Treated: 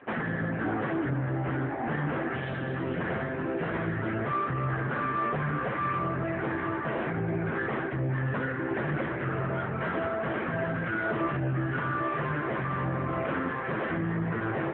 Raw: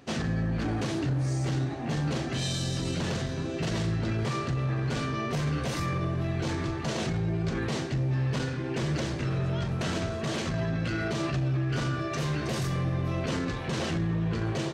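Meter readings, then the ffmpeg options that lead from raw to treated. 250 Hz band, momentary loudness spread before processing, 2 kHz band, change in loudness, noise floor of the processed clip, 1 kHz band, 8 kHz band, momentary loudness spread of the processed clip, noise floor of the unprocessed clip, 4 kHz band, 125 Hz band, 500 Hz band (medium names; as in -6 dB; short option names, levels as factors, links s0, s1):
-1.0 dB, 2 LU, +5.0 dB, -0.5 dB, -33 dBFS, +6.0 dB, under -40 dB, 2 LU, -33 dBFS, -12.5 dB, -4.0 dB, +2.0 dB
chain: -filter_complex "[0:a]lowpass=f=1700:t=q:w=2.1,asplit=2[s0][s1];[s1]highpass=f=720:p=1,volume=7.08,asoftclip=type=tanh:threshold=0.141[s2];[s0][s2]amix=inputs=2:normalize=0,lowpass=f=1100:p=1,volume=0.501" -ar 8000 -c:a libopencore_amrnb -b:a 6700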